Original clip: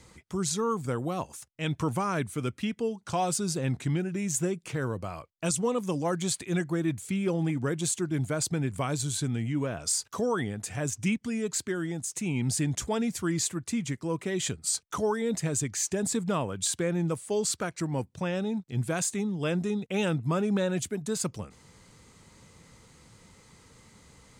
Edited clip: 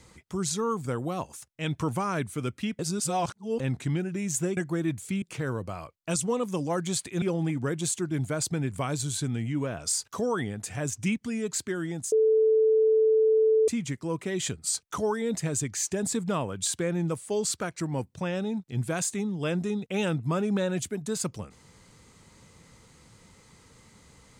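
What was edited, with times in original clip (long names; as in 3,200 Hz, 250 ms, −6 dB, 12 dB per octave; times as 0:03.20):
0:02.79–0:03.60: reverse
0:06.57–0:07.22: move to 0:04.57
0:12.12–0:13.68: beep over 439 Hz −18 dBFS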